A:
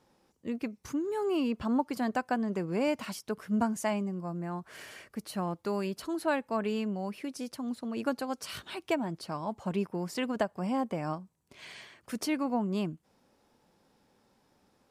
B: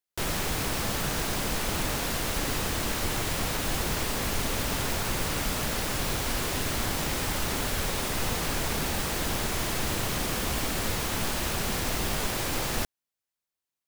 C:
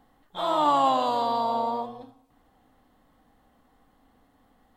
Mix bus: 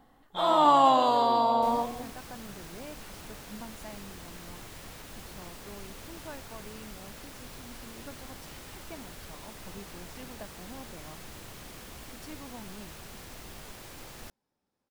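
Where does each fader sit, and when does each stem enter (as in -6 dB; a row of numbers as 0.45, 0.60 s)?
-15.5, -16.5, +1.5 dB; 0.00, 1.45, 0.00 s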